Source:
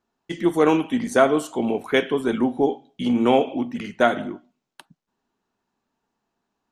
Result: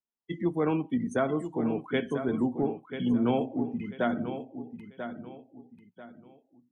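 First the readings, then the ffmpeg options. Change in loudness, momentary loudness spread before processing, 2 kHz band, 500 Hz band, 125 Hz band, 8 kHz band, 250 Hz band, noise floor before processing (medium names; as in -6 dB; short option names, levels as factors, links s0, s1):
-8.5 dB, 11 LU, -11.0 dB, -10.0 dB, -0.5 dB, no reading, -5.5 dB, -80 dBFS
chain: -filter_complex "[0:a]afftdn=nr=27:nf=-30,acrossover=split=180[s0][s1];[s1]acompressor=threshold=0.00282:ratio=1.5[s2];[s0][s2]amix=inputs=2:normalize=0,aecho=1:1:990|1980|2970:0.335|0.104|0.0322,volume=1.19"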